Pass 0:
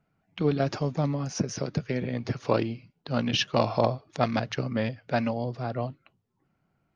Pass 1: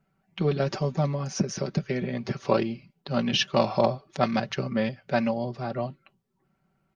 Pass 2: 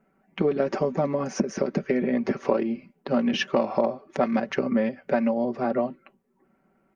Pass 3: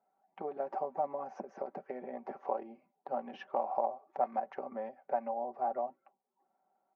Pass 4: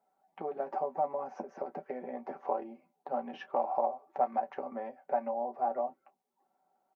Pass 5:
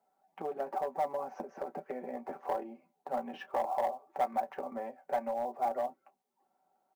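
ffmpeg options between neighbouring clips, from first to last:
ffmpeg -i in.wav -af "aecho=1:1:5.2:0.59" out.wav
ffmpeg -i in.wav -af "equalizer=frequency=125:width_type=o:width=1:gain=-10,equalizer=frequency=250:width_type=o:width=1:gain=12,equalizer=frequency=500:width_type=o:width=1:gain=8,equalizer=frequency=1000:width_type=o:width=1:gain=4,equalizer=frequency=2000:width_type=o:width=1:gain=7,equalizer=frequency=4000:width_type=o:width=1:gain=-8,acompressor=threshold=-20dB:ratio=5" out.wav
ffmpeg -i in.wav -af "bandpass=frequency=790:width_type=q:width=5.6:csg=0" out.wav
ffmpeg -i in.wav -af "aecho=1:1:12|30:0.376|0.158,volume=1.5dB" out.wav
ffmpeg -i in.wav -filter_complex "[0:a]acrossover=split=720[link_01][link_02];[link_01]asoftclip=type=hard:threshold=-32.5dB[link_03];[link_02]acrusher=bits=6:mode=log:mix=0:aa=0.000001[link_04];[link_03][link_04]amix=inputs=2:normalize=0" out.wav

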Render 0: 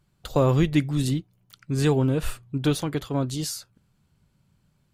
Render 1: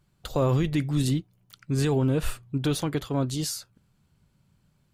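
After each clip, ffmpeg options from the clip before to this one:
ffmpeg -i in.wav -af "alimiter=limit=-15.5dB:level=0:latency=1:release=13" out.wav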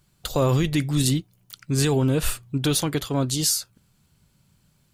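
ffmpeg -i in.wav -af "highshelf=frequency=3200:gain=9.5,volume=2.5dB" out.wav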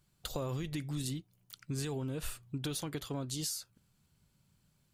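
ffmpeg -i in.wav -af "acompressor=threshold=-25dB:ratio=6,volume=-9dB" out.wav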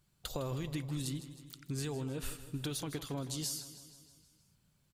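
ffmpeg -i in.wav -af "aecho=1:1:158|316|474|632|790|948:0.224|0.132|0.0779|0.046|0.0271|0.016,volume=-1dB" out.wav

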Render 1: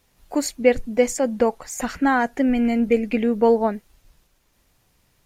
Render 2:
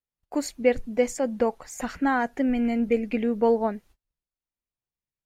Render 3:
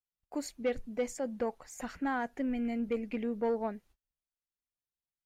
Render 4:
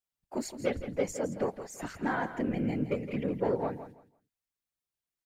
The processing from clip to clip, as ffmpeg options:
ffmpeg -i in.wav -af "agate=range=-29dB:threshold=-46dB:ratio=16:detection=peak,highshelf=frequency=5000:gain=-4.5,volume=-4.5dB" out.wav
ffmpeg -i in.wav -af "asoftclip=type=tanh:threshold=-14.5dB,volume=-8.5dB" out.wav
ffmpeg -i in.wav -af "afftfilt=real='hypot(re,im)*cos(2*PI*random(0))':imag='hypot(re,im)*sin(2*PI*random(1))':win_size=512:overlap=0.75,aecho=1:1:166|332|498:0.251|0.0527|0.0111,volume=8dB" out.wav

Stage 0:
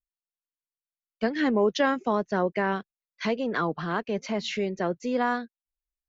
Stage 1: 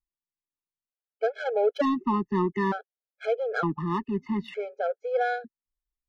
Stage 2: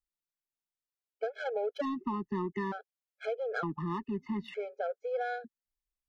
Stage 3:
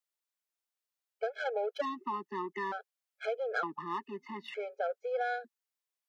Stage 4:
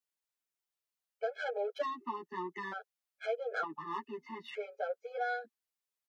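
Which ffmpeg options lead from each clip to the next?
ffmpeg -i in.wav -af "adynamicsmooth=sensitivity=1:basefreq=1200,afftfilt=real='re*gt(sin(2*PI*0.55*pts/sr)*(1-2*mod(floor(b*sr/1024/430),2)),0)':imag='im*gt(sin(2*PI*0.55*pts/sr)*(1-2*mod(floor(b*sr/1024/430),2)),0)':win_size=1024:overlap=0.75,volume=3.5dB" out.wav
ffmpeg -i in.wav -af "acompressor=threshold=-26dB:ratio=6,volume=-4dB" out.wav
ffmpeg -i in.wav -af "highpass=490,volume=2.5dB" out.wav
ffmpeg -i in.wav -filter_complex "[0:a]asplit=2[link_01][link_02];[link_02]adelay=9.5,afreqshift=0.47[link_03];[link_01][link_03]amix=inputs=2:normalize=1,volume=1dB" out.wav

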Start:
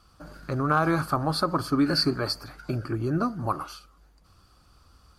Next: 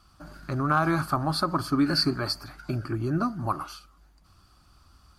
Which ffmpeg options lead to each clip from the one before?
ffmpeg -i in.wav -af "equalizer=frequency=480:width_type=o:width=0.25:gain=-13" out.wav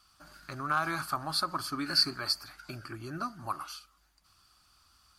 ffmpeg -i in.wav -af "tiltshelf=frequency=910:gain=-8,volume=-7dB" out.wav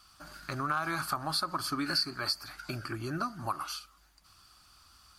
ffmpeg -i in.wav -af "acompressor=threshold=-35dB:ratio=3,volume=5dB" out.wav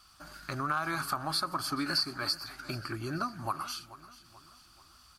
ffmpeg -i in.wav -af "aecho=1:1:435|870|1305|1740:0.133|0.0627|0.0295|0.0138" out.wav

